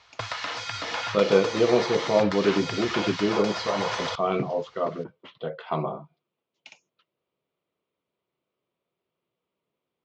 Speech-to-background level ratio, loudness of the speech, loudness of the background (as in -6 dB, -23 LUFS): 5.5 dB, -25.5 LUFS, -31.0 LUFS